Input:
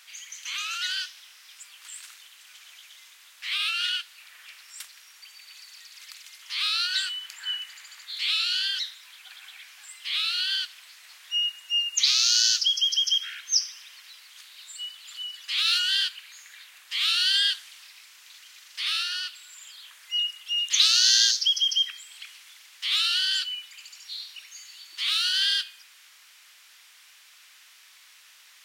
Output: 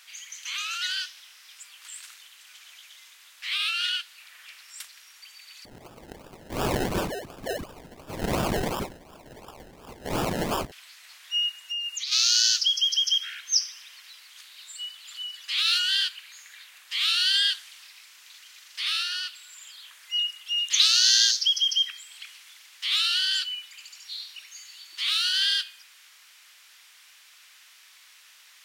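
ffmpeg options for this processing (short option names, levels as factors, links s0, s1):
-filter_complex "[0:a]asettb=1/sr,asplit=3[s0][s1][s2];[s0]atrim=end=5.654[s3];[s1]atrim=start=5.65:end=10.72,asetpts=PTS-STARTPTS,afade=t=in:d=0.004:c=qsin,afade=t=out:st=5.066:d=0.004:c=qsin,acrusher=samples=30:mix=1:aa=0.000001:lfo=1:lforange=18:lforate=2.8[s4];[s2]atrim=start=10.716[s5];[s3][s4]acrossfade=d=0.004:c1=hsin:c2=qsin[s6];[s6][s5]acrossfade=d=0.004:c1=qsin:c2=hsin,asplit=3[s7][s8][s9];[s7]afade=t=out:st=11.55:d=0.02[s10];[s8]acompressor=threshold=0.0398:ratio=12:attack=3.2:release=140:knee=1:detection=peak,afade=t=in:st=11.55:d=0.02,afade=t=out:st=12.11:d=0.02[s11];[s9]afade=t=in:st=12.11:d=0.02[s12];[s10][s11][s12]amix=inputs=3:normalize=0"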